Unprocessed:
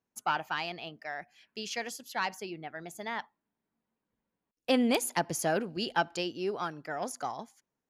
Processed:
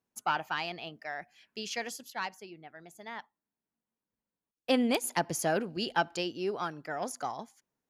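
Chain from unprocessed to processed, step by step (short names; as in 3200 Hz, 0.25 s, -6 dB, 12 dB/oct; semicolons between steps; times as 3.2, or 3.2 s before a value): 2.1–5.04 upward expander 1.5:1, over -39 dBFS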